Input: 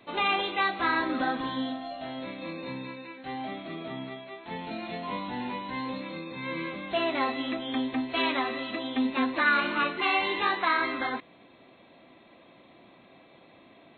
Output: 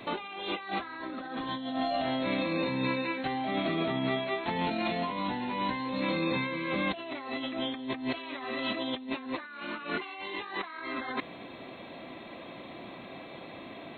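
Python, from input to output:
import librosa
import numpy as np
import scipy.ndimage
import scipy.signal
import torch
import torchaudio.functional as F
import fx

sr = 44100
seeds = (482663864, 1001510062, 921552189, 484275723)

y = fx.over_compress(x, sr, threshold_db=-39.0, ratio=-1.0)
y = y * 10.0 ** (4.0 / 20.0)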